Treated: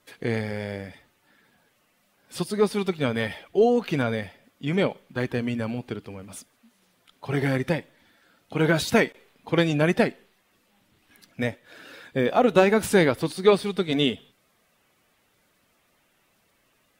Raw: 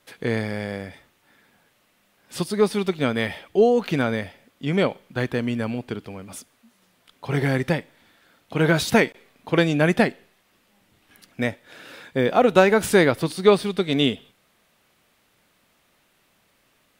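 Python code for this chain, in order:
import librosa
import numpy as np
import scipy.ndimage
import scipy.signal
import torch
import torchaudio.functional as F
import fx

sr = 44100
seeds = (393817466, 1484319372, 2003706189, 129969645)

y = fx.spec_quant(x, sr, step_db=15)
y = y * librosa.db_to_amplitude(-2.0)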